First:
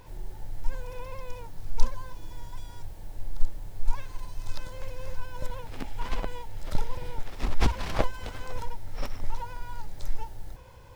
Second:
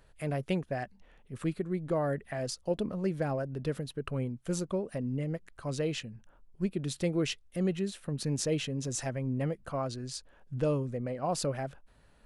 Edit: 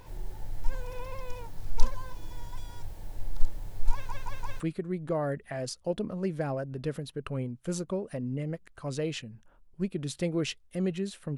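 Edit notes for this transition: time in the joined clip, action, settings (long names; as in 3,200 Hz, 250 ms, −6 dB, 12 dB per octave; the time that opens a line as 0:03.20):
first
0:03.92: stutter in place 0.17 s, 4 plays
0:04.60: continue with second from 0:01.41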